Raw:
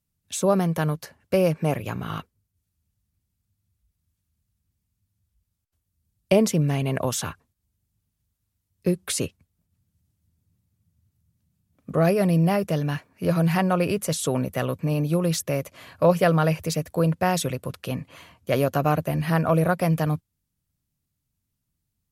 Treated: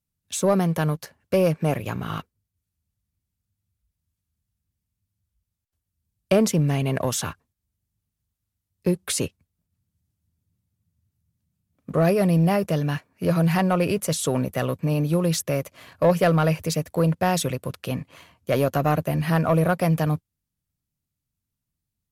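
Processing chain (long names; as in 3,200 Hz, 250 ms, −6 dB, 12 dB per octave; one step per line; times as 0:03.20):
leveller curve on the samples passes 1
level −2.5 dB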